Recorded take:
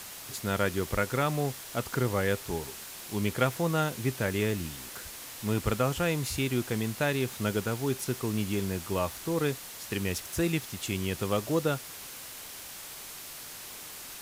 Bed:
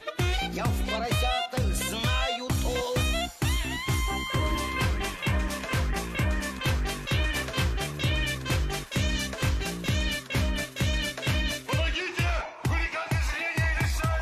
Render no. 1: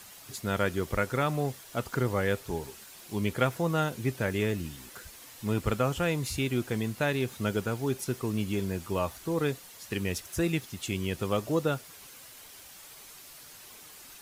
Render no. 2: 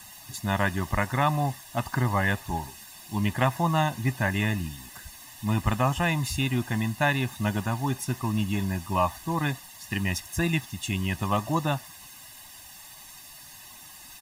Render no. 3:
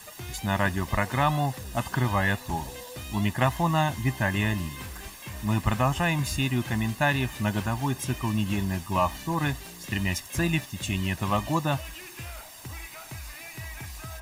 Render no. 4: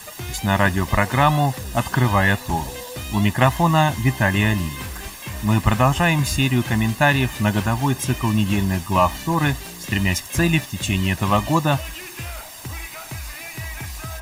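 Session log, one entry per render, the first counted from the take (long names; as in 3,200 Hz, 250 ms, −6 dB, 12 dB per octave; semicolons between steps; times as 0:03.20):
broadband denoise 8 dB, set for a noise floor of −44 dBFS
dynamic equaliser 1,100 Hz, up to +6 dB, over −42 dBFS, Q 0.72; comb filter 1.1 ms, depth 97%
mix in bed −13.5 dB
level +7.5 dB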